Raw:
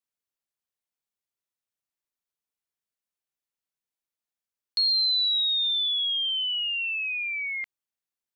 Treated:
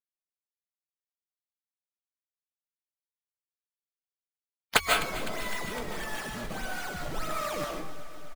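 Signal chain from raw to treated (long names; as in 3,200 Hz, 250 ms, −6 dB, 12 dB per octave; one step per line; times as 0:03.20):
camcorder AGC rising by 6.1 dB per second
low-pass filter 1,900 Hz 12 dB per octave
spectral tilt +2 dB per octave
mains-hum notches 50/100/150 Hz
slack as between gear wheels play −32 dBFS
phase-vocoder pitch shift with formants kept −11 semitones
sample-and-hold swept by an LFO 18×, swing 160% 1.6 Hz
pitch-shifted copies added −12 semitones −4 dB, +7 semitones −17 dB
flanger 1.9 Hz, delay 4.3 ms, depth 2.2 ms, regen +42%
delay that swaps between a low-pass and a high-pass 127 ms, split 1,300 Hz, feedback 85%, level −12.5 dB
convolution reverb RT60 0.45 s, pre-delay 110 ms, DRR 0 dB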